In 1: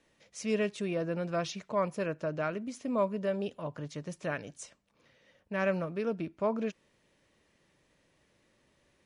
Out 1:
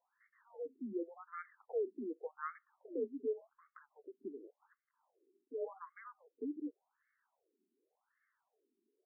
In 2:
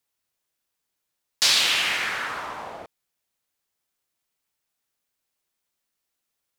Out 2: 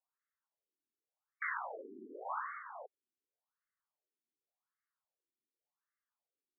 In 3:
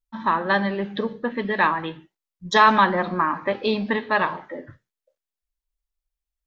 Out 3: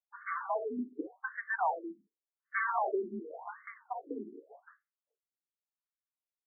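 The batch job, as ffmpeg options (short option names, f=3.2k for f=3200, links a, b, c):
-af "aeval=exprs='0.168*(abs(mod(val(0)/0.168+3,4)-2)-1)':c=same,highpass=f=370:t=q:w=0.5412,highpass=f=370:t=q:w=1.307,lowpass=f=3.1k:t=q:w=0.5176,lowpass=f=3.1k:t=q:w=0.7071,lowpass=f=3.1k:t=q:w=1.932,afreqshift=-150,afftfilt=real='re*between(b*sr/1024,280*pow(1600/280,0.5+0.5*sin(2*PI*0.88*pts/sr))/1.41,280*pow(1600/280,0.5+0.5*sin(2*PI*0.88*pts/sr))*1.41)':imag='im*between(b*sr/1024,280*pow(1600/280,0.5+0.5*sin(2*PI*0.88*pts/sr))/1.41,280*pow(1600/280,0.5+0.5*sin(2*PI*0.88*pts/sr))*1.41)':win_size=1024:overlap=0.75,volume=-4dB"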